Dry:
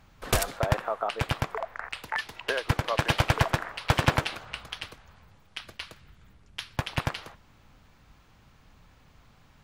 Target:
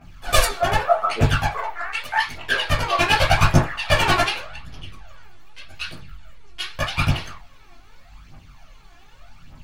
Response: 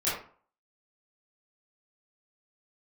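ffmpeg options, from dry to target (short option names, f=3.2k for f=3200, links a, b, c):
-filter_complex "[0:a]asettb=1/sr,asplit=3[a][b][c];[a]atrim=end=4.404[d];[b]atrim=start=4.4:end=5.74,asetpts=PTS-STARTPTS,afade=t=in:d=0.004:c=qsin,afade=t=out:st=1.336:d=0.004:c=qsin,acrossover=split=470[e][f];[f]acompressor=threshold=-46dB:ratio=10[g];[e][g]amix=inputs=2:normalize=0[h];[c]atrim=start=5.736[i];[d][h]acrossfade=d=0.004:c1=hsin:c2=qsin[j];[j][i]acrossfade=d=0.004:c1=qsin:c2=hsin,aphaser=in_gain=1:out_gain=1:delay=3:decay=0.79:speed=0.84:type=triangular[k];[1:a]atrim=start_sample=2205,asetrate=83790,aresample=44100[l];[k][l]afir=irnorm=-1:irlink=0,volume=1dB"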